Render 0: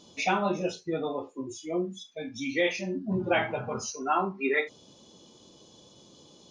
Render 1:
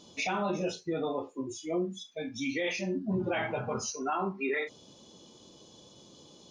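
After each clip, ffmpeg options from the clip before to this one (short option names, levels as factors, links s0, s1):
-af "alimiter=limit=0.0708:level=0:latency=1:release=22"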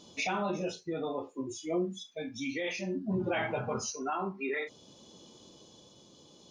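-af "tremolo=f=0.57:d=0.29"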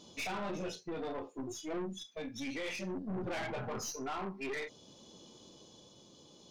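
-af "aeval=exprs='(tanh(56.2*val(0)+0.4)-tanh(0.4))/56.2':c=same"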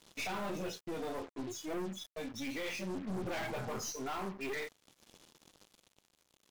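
-af "acrusher=bits=7:mix=0:aa=0.5"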